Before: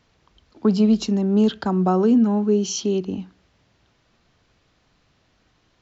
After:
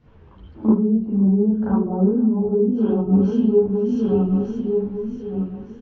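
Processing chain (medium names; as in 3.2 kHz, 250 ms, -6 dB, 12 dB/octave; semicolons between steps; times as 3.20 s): backward echo that repeats 604 ms, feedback 51%, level -8.5 dB; low-pass 1.7 kHz 6 dB/octave; bass shelf 380 Hz +11.5 dB; low-pass that closes with the level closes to 690 Hz, closed at -8 dBFS; compression 12:1, threshold -22 dBFS, peak gain reduction 19 dB; delay 502 ms -19.5 dB; reverberation, pre-delay 36 ms, DRR -9.5 dB; three-phase chorus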